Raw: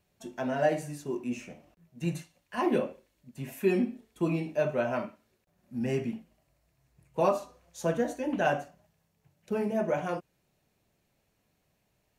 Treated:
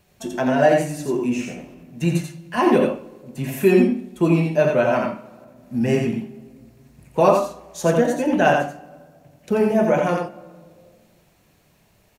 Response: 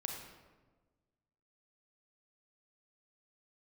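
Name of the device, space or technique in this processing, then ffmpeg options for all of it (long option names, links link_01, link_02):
ducked reverb: -filter_complex "[0:a]aecho=1:1:86:0.631,asplit=3[link_01][link_02][link_03];[1:a]atrim=start_sample=2205[link_04];[link_02][link_04]afir=irnorm=-1:irlink=0[link_05];[link_03]apad=whole_len=541052[link_06];[link_05][link_06]sidechaincompress=threshold=-38dB:ratio=8:attack=16:release=918,volume=-1.5dB[link_07];[link_01][link_07]amix=inputs=2:normalize=0,volume=9dB"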